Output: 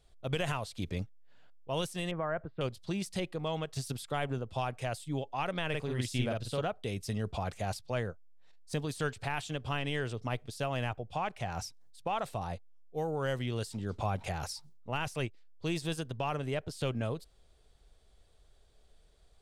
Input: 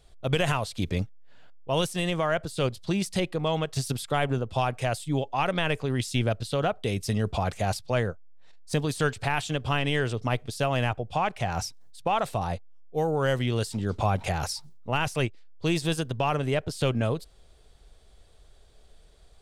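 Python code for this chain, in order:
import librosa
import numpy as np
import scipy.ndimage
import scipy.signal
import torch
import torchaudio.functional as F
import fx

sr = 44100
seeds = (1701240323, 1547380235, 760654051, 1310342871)

y = fx.lowpass(x, sr, hz=1800.0, slope=24, at=(2.11, 2.61))
y = fx.doubler(y, sr, ms=48.0, db=-2.0, at=(5.69, 6.61))
y = F.gain(torch.from_numpy(y), -8.0).numpy()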